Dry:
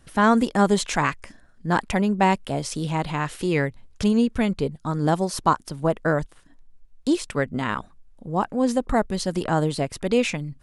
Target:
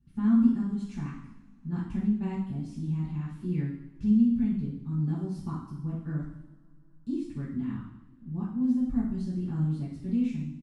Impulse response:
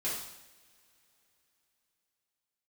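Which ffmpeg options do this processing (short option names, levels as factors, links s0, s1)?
-filter_complex "[0:a]firequalizer=gain_entry='entry(270,0);entry(480,-29);entry(1000,-20);entry(8600,-24)':delay=0.05:min_phase=1,asettb=1/sr,asplit=3[s0][s1][s2];[s0]atrim=end=0.594[s3];[s1]atrim=start=0.59:end=1.73,asetpts=PTS-STARTPTS,afade=t=in:d=0.004:c=qsin,afade=t=out:st=1.136:d=0.004:c=qsin,acompressor=threshold=0.0562:ratio=6[s4];[s2]atrim=start=1.726[s5];[s3][s4]acrossfade=d=0.004:c1=hsin:c2=qsin[s6];[s6][s5]acrossfade=d=0.004:c1=qsin:c2=hsin[s7];[1:a]atrim=start_sample=2205,asetrate=48510,aresample=44100[s8];[s7][s8]afir=irnorm=-1:irlink=0,volume=0.447"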